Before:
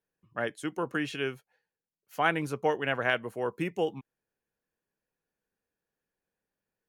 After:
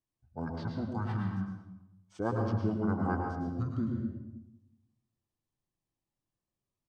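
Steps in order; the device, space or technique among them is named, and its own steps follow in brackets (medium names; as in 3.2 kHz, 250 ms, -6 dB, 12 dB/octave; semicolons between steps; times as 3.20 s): monster voice (pitch shift -6 st; formant shift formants -6 st; bass shelf 160 Hz +8 dB; delay 103 ms -10.5 dB; reverberation RT60 0.90 s, pre-delay 105 ms, DRR 2 dB); trim -7.5 dB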